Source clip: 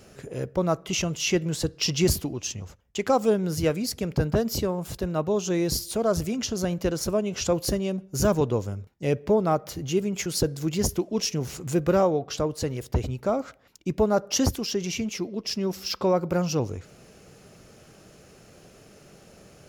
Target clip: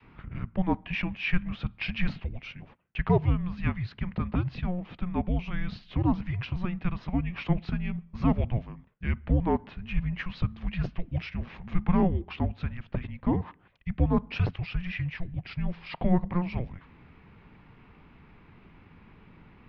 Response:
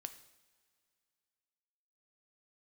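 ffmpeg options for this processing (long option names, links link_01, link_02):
-af "adynamicequalizer=threshold=0.0178:dfrequency=420:dqfactor=0.82:tfrequency=420:tqfactor=0.82:attack=5:release=100:ratio=0.375:range=2.5:mode=cutabove:tftype=bell,highpass=frequency=190:width_type=q:width=0.5412,highpass=frequency=190:width_type=q:width=1.307,lowpass=frequency=3300:width_type=q:width=0.5176,lowpass=frequency=3300:width_type=q:width=0.7071,lowpass=frequency=3300:width_type=q:width=1.932,afreqshift=-360"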